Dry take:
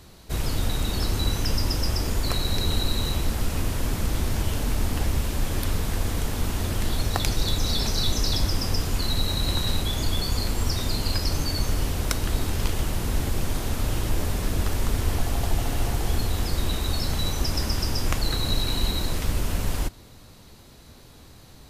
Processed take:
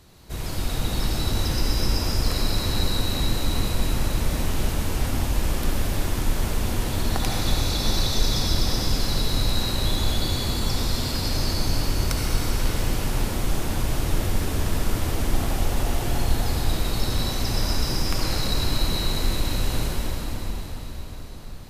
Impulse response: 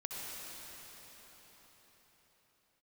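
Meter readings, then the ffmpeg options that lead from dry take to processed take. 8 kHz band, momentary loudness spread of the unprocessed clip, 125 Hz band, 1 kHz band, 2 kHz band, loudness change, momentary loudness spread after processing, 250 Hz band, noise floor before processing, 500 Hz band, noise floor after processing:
+1.0 dB, 3 LU, +0.5 dB, +2.0 dB, +2.0 dB, +1.0 dB, 4 LU, +2.0 dB, -48 dBFS, +2.0 dB, -33 dBFS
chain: -filter_complex "[1:a]atrim=start_sample=2205,asetrate=42336,aresample=44100[a];[0:a][a]afir=irnorm=-1:irlink=0"

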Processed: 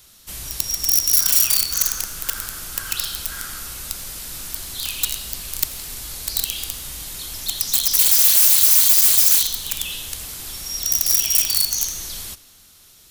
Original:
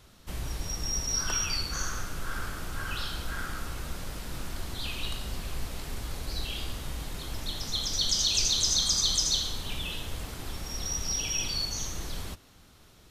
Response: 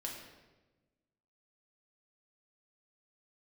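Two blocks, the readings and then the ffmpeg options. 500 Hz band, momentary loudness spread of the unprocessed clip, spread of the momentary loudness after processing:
n/a, 15 LU, 20 LU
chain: -filter_complex "[0:a]aeval=exprs='(mod(15*val(0)+1,2)-1)/15':c=same,crystalizer=i=7:c=0,asplit=2[a][b];[1:a]atrim=start_sample=2205,adelay=85[c];[b][c]afir=irnorm=-1:irlink=0,volume=-18.5dB[d];[a][d]amix=inputs=2:normalize=0,volume=-4dB"

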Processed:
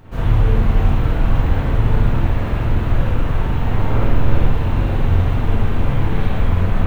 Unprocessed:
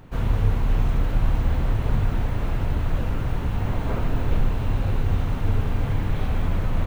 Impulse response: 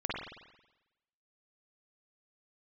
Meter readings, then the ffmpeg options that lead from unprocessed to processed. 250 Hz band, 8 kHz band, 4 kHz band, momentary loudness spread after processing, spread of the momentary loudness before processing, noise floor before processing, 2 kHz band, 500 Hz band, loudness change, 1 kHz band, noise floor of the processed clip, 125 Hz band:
+7.0 dB, n/a, +5.5 dB, 3 LU, 3 LU, -27 dBFS, +7.0 dB, +7.5 dB, +6.5 dB, +7.0 dB, -21 dBFS, +7.0 dB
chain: -filter_complex "[1:a]atrim=start_sample=2205,atrim=end_sample=6615[a];[0:a][a]afir=irnorm=-1:irlink=0,volume=2dB"

